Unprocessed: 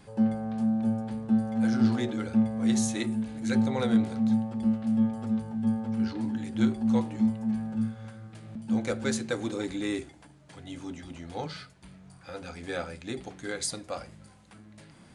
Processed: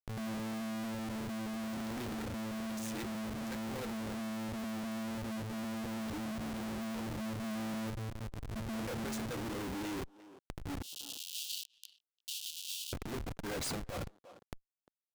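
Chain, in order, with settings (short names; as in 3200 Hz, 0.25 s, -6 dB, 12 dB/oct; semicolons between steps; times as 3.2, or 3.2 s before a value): Schmitt trigger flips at -40 dBFS; 10.82–12.93 steep high-pass 2800 Hz 96 dB/oct; speakerphone echo 0.35 s, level -20 dB; compressor 12:1, threshold -39 dBFS, peak gain reduction 12 dB; sample leveller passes 1; vocal rider 2 s; core saturation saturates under 130 Hz; gain -3 dB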